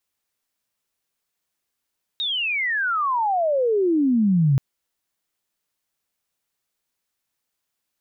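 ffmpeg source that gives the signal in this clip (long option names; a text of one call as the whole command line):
ffmpeg -f lavfi -i "aevalsrc='pow(10,(-22+8*t/2.38)/20)*sin(2*PI*3800*2.38/log(130/3800)*(exp(log(130/3800)*t/2.38)-1))':duration=2.38:sample_rate=44100" out.wav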